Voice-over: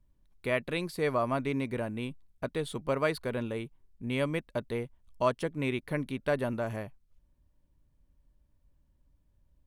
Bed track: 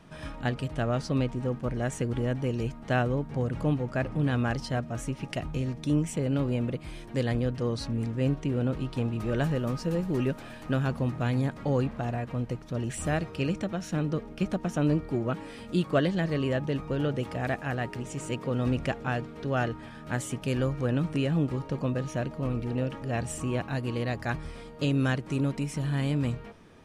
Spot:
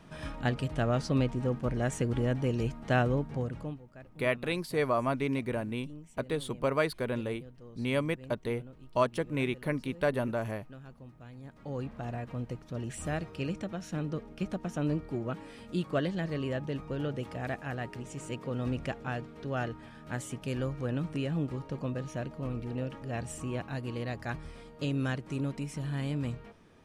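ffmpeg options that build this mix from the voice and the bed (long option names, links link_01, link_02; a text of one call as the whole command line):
ffmpeg -i stem1.wav -i stem2.wav -filter_complex "[0:a]adelay=3750,volume=0.5dB[link_01];[1:a]volume=15.5dB,afade=type=out:start_time=3.16:duration=0.65:silence=0.0891251,afade=type=in:start_time=11.4:duration=0.75:silence=0.158489[link_02];[link_01][link_02]amix=inputs=2:normalize=0" out.wav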